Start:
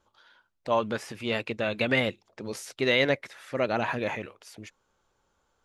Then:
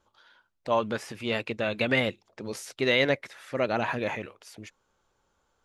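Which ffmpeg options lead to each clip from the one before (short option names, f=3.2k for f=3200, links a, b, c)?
-af anull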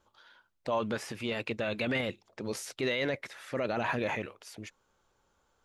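-af "alimiter=limit=-21dB:level=0:latency=1:release=14"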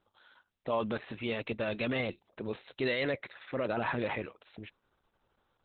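-ar 48000 -c:a libopus -b:a 8k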